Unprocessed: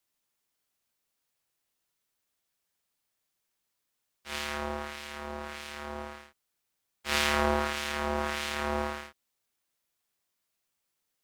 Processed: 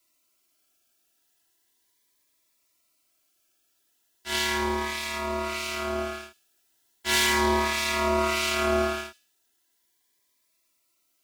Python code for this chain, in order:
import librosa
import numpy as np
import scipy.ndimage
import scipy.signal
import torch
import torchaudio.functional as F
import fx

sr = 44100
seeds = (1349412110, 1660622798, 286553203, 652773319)

p1 = fx.low_shelf(x, sr, hz=76.0, db=-11.0)
p2 = p1 + 0.97 * np.pad(p1, (int(3.0 * sr / 1000.0), 0))[:len(p1)]
p3 = fx.rider(p2, sr, range_db=4, speed_s=0.5)
p4 = p2 + F.gain(torch.from_numpy(p3), 1.5).numpy()
p5 = np.clip(p4, -10.0 ** (-9.5 / 20.0), 10.0 ** (-9.5 / 20.0))
p6 = p5 + fx.echo_wet_highpass(p5, sr, ms=77, feedback_pct=34, hz=4000.0, wet_db=-13.5, dry=0)
y = fx.notch_cascade(p6, sr, direction='rising', hz=0.37)